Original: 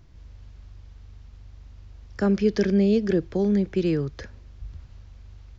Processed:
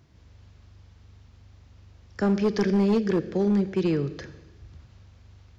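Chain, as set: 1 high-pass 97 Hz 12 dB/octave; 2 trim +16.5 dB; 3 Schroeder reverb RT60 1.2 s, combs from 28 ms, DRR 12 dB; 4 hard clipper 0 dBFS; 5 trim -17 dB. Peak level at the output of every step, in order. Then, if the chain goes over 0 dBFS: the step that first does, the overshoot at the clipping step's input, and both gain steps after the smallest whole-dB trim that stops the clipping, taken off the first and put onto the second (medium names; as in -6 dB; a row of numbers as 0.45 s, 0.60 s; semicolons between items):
-10.5 dBFS, +6.0 dBFS, +6.5 dBFS, 0.0 dBFS, -17.0 dBFS; step 2, 6.5 dB; step 2 +9.5 dB, step 5 -10 dB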